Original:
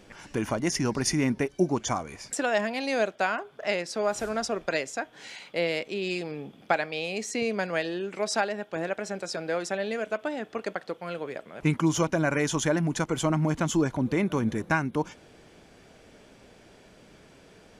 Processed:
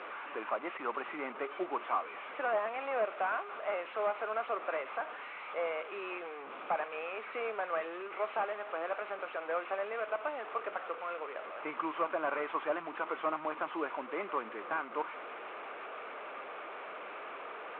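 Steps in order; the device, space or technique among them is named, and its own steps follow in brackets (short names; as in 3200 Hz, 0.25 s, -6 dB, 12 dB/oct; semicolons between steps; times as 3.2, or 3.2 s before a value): digital answering machine (BPF 400–3200 Hz; delta modulation 16 kbps, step -34.5 dBFS; speaker cabinet 470–3700 Hz, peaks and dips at 1200 Hz +9 dB, 1800 Hz -5 dB, 3100 Hz -5 dB); gain -3 dB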